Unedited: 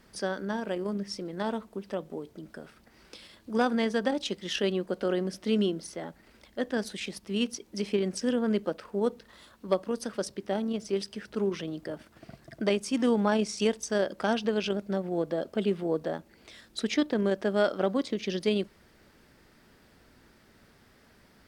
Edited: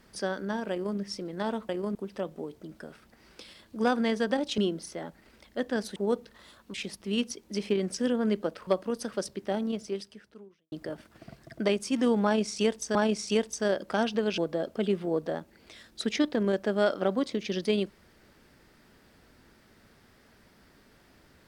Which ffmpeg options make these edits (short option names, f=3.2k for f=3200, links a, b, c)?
-filter_complex "[0:a]asplit=10[a][b][c][d][e][f][g][h][i][j];[a]atrim=end=1.692[k];[b]atrim=start=0.708:end=0.972[l];[c]atrim=start=1.688:end=4.322[m];[d]atrim=start=5.588:end=6.972[n];[e]atrim=start=8.898:end=9.682[o];[f]atrim=start=6.968:end=8.902[p];[g]atrim=start=9.678:end=11.73,asetpts=PTS-STARTPTS,afade=t=out:st=1.052:d=1:c=qua[q];[h]atrim=start=11.73:end=13.962,asetpts=PTS-STARTPTS,afade=t=in:d=0.004:c=hsin[r];[i]atrim=start=13.248:end=14.682[s];[j]atrim=start=15.158[t];[k][l]acrossfade=d=0.004:c1=hsin:c2=hsin[u];[u][m]acrossfade=d=0.004:c1=hsin:c2=hsin[v];[v][n]acrossfade=d=0.004:c1=hsin:c2=hsin[w];[w][o]acrossfade=d=0.004:c1=hsin:c2=hsin[x];[x][p]acrossfade=d=0.004:c1=hsin:c2=hsin[y];[q][r]concat=n=2:v=0:a=1[z];[y][z]acrossfade=d=0.004:c1=hsin:c2=hsin[aa];[aa][s]acrossfade=d=0.004:c1=hsin:c2=hsin[ab];[ab][t]acrossfade=d=0.004:c1=hsin:c2=hsin"